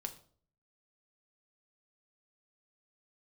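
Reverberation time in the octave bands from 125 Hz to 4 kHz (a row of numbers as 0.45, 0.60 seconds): 0.75, 0.60, 0.55, 0.45, 0.35, 0.40 seconds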